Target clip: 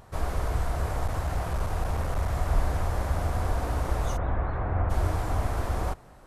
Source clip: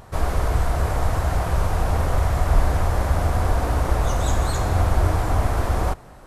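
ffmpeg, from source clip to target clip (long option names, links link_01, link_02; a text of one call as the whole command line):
ffmpeg -i in.wav -filter_complex "[0:a]asettb=1/sr,asplit=3[link_01][link_02][link_03];[link_01]atrim=end=1.004[link_04];[link_02]atrim=start=1:end=2.29,asetpts=PTS-STARTPTS,afade=type=in:duration=0.004:curve=qsin,afade=type=out:start_time=1.286:duration=0.004:curve=qsin,aeval=exprs='clip(val(0),-1,0.133)':channel_layout=same[link_05];[link_03]atrim=start=2.286[link_06];[link_04][link_05]acrossfade=duration=0.004:curve1=hsin:curve2=qsin[link_07];[link_07][link_06]acrossfade=duration=0.004:curve1=qsin:curve2=hsin,asplit=3[link_08][link_09][link_10];[link_08]afade=type=out:start_time=4.16:duration=0.02[link_11];[link_09]lowpass=frequency=2100:width=0.5412,lowpass=frequency=2100:width=1.3066,afade=type=in:start_time=4.16:duration=0.02,afade=type=out:start_time=4.89:duration=0.02[link_12];[link_10]afade=type=in:start_time=4.89:duration=0.02[link_13];[link_11][link_12][link_13]amix=inputs=3:normalize=0,volume=-7dB" out.wav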